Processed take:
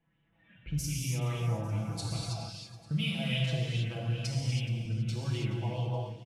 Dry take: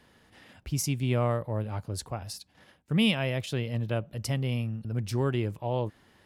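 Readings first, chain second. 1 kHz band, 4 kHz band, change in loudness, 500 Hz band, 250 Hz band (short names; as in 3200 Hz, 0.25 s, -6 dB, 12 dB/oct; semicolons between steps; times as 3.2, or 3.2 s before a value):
-6.5 dB, -1.5 dB, -3.0 dB, -9.0 dB, -6.5 dB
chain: Wiener smoothing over 9 samples; low-pass opened by the level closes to 2600 Hz, open at -25 dBFS; band shelf 790 Hz -9.5 dB 2.7 oct; spectral noise reduction 14 dB; comb 6 ms, depth 84%; compressor 5:1, threshold -34 dBFS, peak gain reduction 14.5 dB; feedback echo 0.424 s, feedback 55%, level -17 dB; non-linear reverb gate 0.35 s flat, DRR -4.5 dB; LFO bell 2.5 Hz 700–3300 Hz +7 dB; gain -1.5 dB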